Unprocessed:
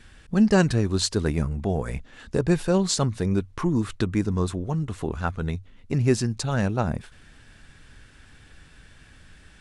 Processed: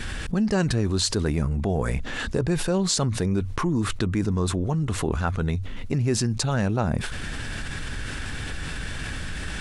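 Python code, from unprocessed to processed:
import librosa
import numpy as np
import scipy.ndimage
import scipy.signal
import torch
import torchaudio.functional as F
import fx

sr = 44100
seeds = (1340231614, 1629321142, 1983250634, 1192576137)

y = fx.env_flatten(x, sr, amount_pct=70)
y = F.gain(torch.from_numpy(y), -6.0).numpy()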